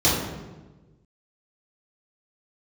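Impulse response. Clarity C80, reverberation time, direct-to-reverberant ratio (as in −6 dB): 4.0 dB, 1.2 s, −9.0 dB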